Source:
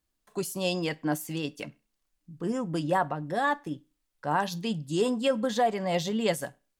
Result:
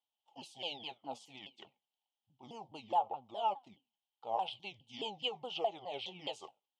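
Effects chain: sawtooth pitch modulation -8 st, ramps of 209 ms; two resonant band-passes 1.6 kHz, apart 1.9 oct; trim +2.5 dB

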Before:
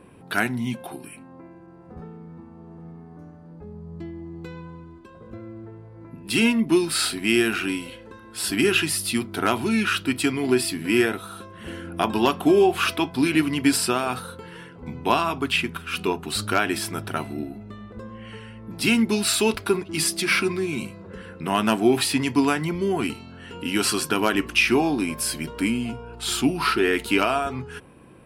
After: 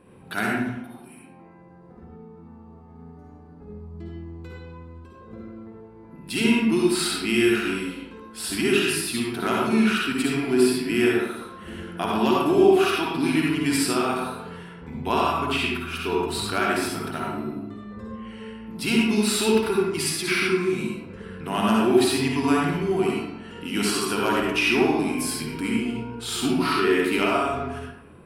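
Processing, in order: 0.62–2.89 s: compression, threshold -41 dBFS, peak gain reduction 16.5 dB; reverberation RT60 0.95 s, pre-delay 50 ms, DRR -3.5 dB; trim -5.5 dB

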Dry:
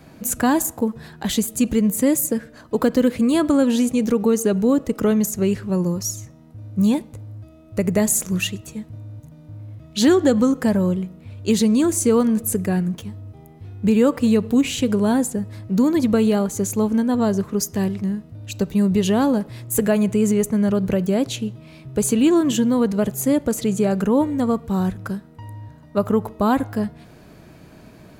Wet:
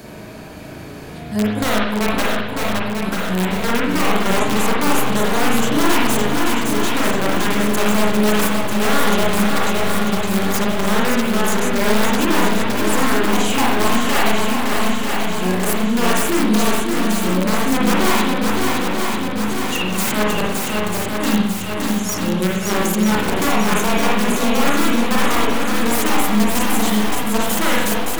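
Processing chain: reverse the whole clip; tone controls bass -6 dB, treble +4 dB; in parallel at -0.5 dB: gain riding within 4 dB 2 s; on the sum: integer overflow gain 8 dB; shuffle delay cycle 942 ms, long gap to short 1.5:1, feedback 55%, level -5 dB; reverberation RT60 0.80 s, pre-delay 38 ms, DRR -4.5 dB; three bands compressed up and down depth 40%; trim -9 dB

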